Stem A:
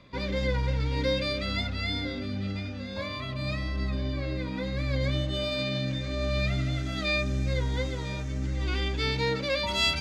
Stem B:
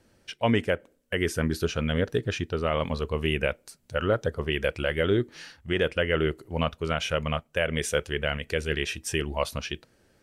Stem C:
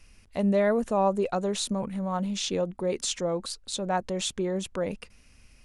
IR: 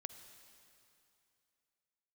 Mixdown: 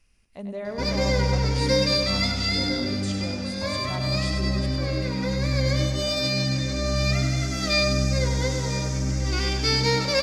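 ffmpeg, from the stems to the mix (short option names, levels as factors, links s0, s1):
-filter_complex "[0:a]highshelf=f=4300:t=q:w=3:g=6.5,acontrast=64,adelay=650,volume=0.891,asplit=2[s0][s1];[s1]volume=0.422[s2];[2:a]volume=0.316,asplit=2[s3][s4];[s4]volume=0.473[s5];[s2][s5]amix=inputs=2:normalize=0,aecho=0:1:98|196|294|392|490|588|686|784|882:1|0.59|0.348|0.205|0.121|0.0715|0.0422|0.0249|0.0147[s6];[s0][s3][s6]amix=inputs=3:normalize=0"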